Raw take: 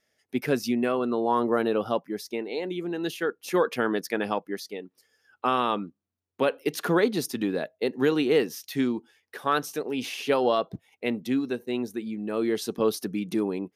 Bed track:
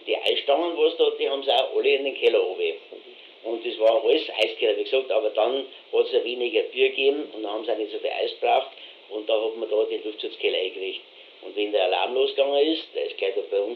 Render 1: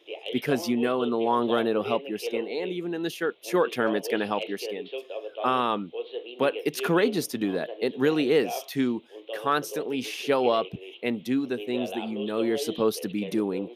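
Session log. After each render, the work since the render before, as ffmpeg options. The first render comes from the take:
ffmpeg -i in.wav -i bed.wav -filter_complex "[1:a]volume=-13dB[link_01];[0:a][link_01]amix=inputs=2:normalize=0" out.wav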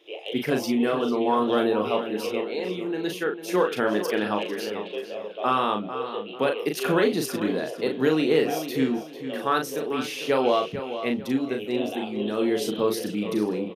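ffmpeg -i in.wav -filter_complex "[0:a]asplit=2[link_01][link_02];[link_02]adelay=38,volume=-5dB[link_03];[link_01][link_03]amix=inputs=2:normalize=0,asplit=2[link_04][link_05];[link_05]adelay=447,lowpass=frequency=5000:poles=1,volume=-10.5dB,asplit=2[link_06][link_07];[link_07]adelay=447,lowpass=frequency=5000:poles=1,volume=0.33,asplit=2[link_08][link_09];[link_09]adelay=447,lowpass=frequency=5000:poles=1,volume=0.33,asplit=2[link_10][link_11];[link_11]adelay=447,lowpass=frequency=5000:poles=1,volume=0.33[link_12];[link_04][link_06][link_08][link_10][link_12]amix=inputs=5:normalize=0" out.wav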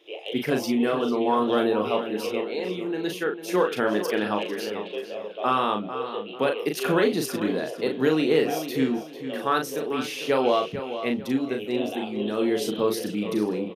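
ffmpeg -i in.wav -af anull out.wav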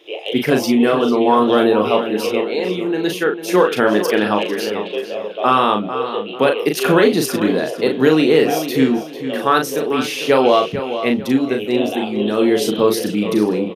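ffmpeg -i in.wav -af "volume=9dB,alimiter=limit=-2dB:level=0:latency=1" out.wav

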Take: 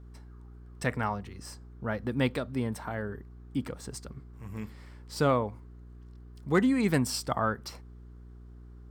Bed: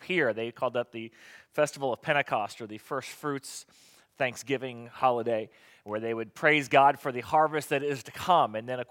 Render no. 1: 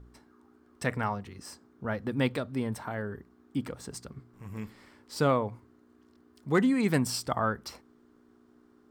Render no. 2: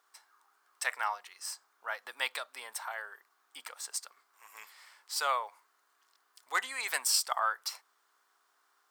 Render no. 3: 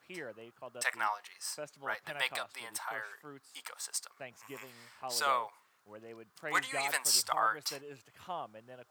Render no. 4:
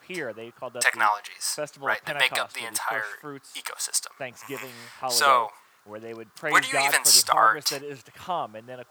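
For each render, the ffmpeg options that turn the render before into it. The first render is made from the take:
ffmpeg -i in.wav -af "bandreject=frequency=60:width_type=h:width=4,bandreject=frequency=120:width_type=h:width=4,bandreject=frequency=180:width_type=h:width=4" out.wav
ffmpeg -i in.wav -af "highpass=frequency=800:width=0.5412,highpass=frequency=800:width=1.3066,highshelf=frequency=4000:gain=9" out.wav
ffmpeg -i in.wav -i bed.wav -filter_complex "[1:a]volume=-18dB[link_01];[0:a][link_01]amix=inputs=2:normalize=0" out.wav
ffmpeg -i in.wav -af "volume=11.5dB" out.wav

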